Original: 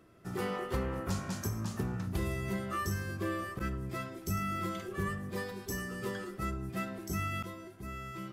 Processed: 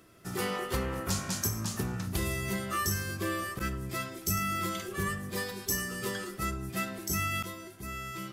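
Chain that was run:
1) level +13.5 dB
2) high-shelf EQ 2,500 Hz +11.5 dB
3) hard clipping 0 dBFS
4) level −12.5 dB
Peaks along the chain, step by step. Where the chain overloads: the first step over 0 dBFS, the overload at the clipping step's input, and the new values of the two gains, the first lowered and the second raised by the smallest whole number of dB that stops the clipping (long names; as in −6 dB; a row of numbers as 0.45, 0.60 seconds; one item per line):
−7.5, −3.5, −3.5, −16.0 dBFS
no step passes full scale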